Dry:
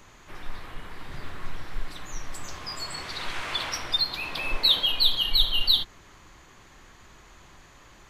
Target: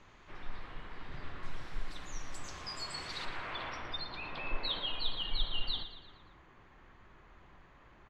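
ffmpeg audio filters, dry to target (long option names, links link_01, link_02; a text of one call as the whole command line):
ffmpeg -i in.wav -af "asetnsamples=nb_out_samples=441:pad=0,asendcmd='1.43 lowpass f 8200;3.25 lowpass f 2200',lowpass=4000,aecho=1:1:115|230|345|460|575:0.266|0.128|0.0613|0.0294|0.0141,volume=-6.5dB" out.wav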